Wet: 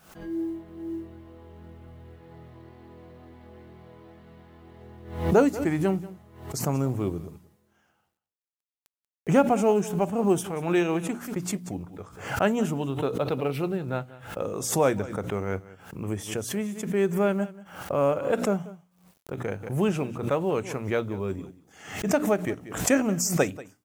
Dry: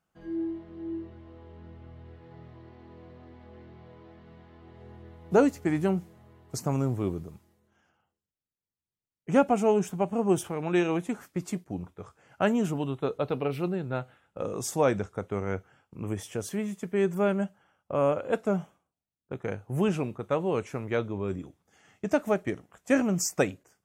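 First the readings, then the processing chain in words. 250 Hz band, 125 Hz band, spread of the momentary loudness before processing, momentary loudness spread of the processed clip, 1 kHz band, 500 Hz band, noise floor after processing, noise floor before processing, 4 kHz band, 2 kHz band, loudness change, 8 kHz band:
+2.0 dB, +2.5 dB, 15 LU, 15 LU, +2.0 dB, +2.0 dB, -81 dBFS, under -85 dBFS, +4.5 dB, +2.5 dB, +2.0 dB, +5.5 dB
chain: high shelf 11000 Hz +4 dB; notches 60/120/180/240/300 Hz; companded quantiser 8-bit; echo 0.186 s -18.5 dB; backwards sustainer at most 91 dB/s; gain +1.5 dB

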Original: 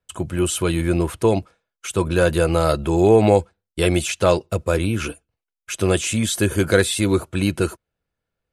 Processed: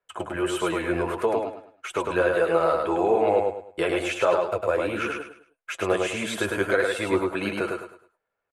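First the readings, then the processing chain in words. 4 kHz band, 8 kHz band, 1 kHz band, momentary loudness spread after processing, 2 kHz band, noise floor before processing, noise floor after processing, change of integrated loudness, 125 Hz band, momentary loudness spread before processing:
-7.5 dB, -13.0 dB, -0.5 dB, 12 LU, -1.0 dB, -85 dBFS, -82 dBFS, -5.5 dB, -17.0 dB, 9 LU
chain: three-band isolator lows -20 dB, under 410 Hz, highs -18 dB, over 2300 Hz; compressor 2:1, threshold -28 dBFS, peak gain reduction 9 dB; flange 1.6 Hz, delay 4.5 ms, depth 6.9 ms, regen +33%; feedback echo 0.104 s, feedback 31%, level -3.5 dB; gain +8 dB

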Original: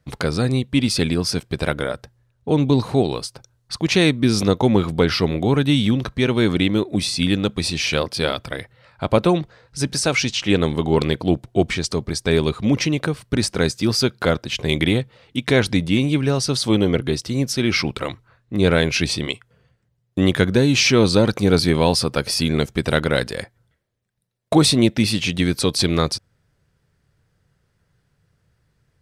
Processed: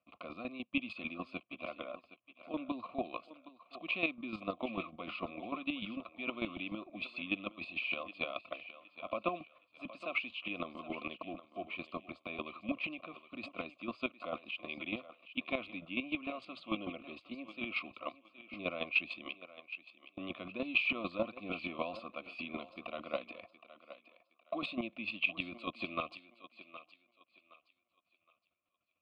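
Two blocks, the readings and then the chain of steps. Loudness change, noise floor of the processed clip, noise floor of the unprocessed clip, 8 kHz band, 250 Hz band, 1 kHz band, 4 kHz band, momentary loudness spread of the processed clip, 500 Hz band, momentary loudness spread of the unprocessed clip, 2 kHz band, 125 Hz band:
-20.0 dB, -80 dBFS, -67 dBFS, under -40 dB, -23.0 dB, -15.5 dB, -22.5 dB, 16 LU, -22.5 dB, 9 LU, -13.0 dB, -34.5 dB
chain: HPF 120 Hz 12 dB/oct; high shelf 3200 Hz -9 dB; in parallel at -0.5 dB: limiter -9 dBFS, peak gain reduction 7.5 dB; on the sum: vowel filter a; fixed phaser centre 330 Hz, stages 4; chopper 6.7 Hz, depth 65%, duty 20%; air absorption 150 m; fixed phaser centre 1600 Hz, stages 6; on a send: thinning echo 0.767 s, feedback 31%, high-pass 380 Hz, level -13.5 dB; on the sum: gain +8 dB

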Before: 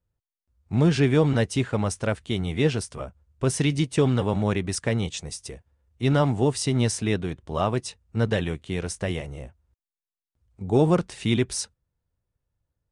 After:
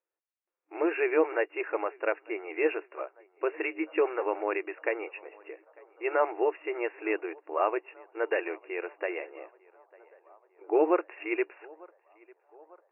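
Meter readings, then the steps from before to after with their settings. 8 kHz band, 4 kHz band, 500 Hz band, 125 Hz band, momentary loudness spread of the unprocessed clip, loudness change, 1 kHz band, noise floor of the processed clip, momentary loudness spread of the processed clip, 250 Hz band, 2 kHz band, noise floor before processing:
under -40 dB, under -15 dB, -2.0 dB, under -40 dB, 13 LU, -6.0 dB, -1.0 dB, under -85 dBFS, 17 LU, -10.5 dB, -0.5 dB, under -85 dBFS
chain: low shelf 470 Hz -4 dB; narrowing echo 0.898 s, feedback 72%, band-pass 820 Hz, level -23 dB; FFT band-pass 310–2800 Hz

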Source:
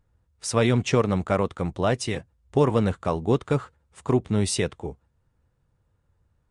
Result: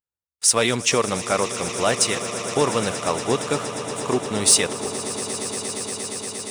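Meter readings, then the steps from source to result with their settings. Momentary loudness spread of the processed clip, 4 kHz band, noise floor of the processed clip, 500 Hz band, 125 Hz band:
10 LU, +11.0 dB, under -85 dBFS, +1.5 dB, -6.5 dB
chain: gate with hold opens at -54 dBFS; RIAA curve recording; sample leveller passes 1; swelling echo 0.117 s, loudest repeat 8, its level -16.5 dB

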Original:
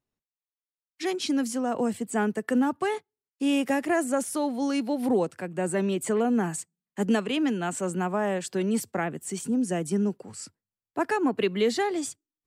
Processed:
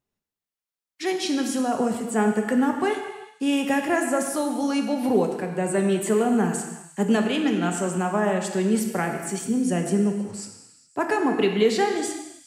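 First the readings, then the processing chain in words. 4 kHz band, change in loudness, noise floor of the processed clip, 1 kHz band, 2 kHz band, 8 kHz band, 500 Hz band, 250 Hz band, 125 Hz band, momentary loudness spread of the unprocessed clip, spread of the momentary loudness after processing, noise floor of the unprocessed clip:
+3.5 dB, +3.5 dB, under -85 dBFS, +4.0 dB, +4.0 dB, +3.5 dB, +4.0 dB, +3.5 dB, +5.0 dB, 8 LU, 8 LU, under -85 dBFS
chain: delay with a stepping band-pass 0.103 s, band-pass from 1200 Hz, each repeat 0.7 oct, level -11 dB; non-linear reverb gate 0.43 s falling, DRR 3.5 dB; gain +2 dB

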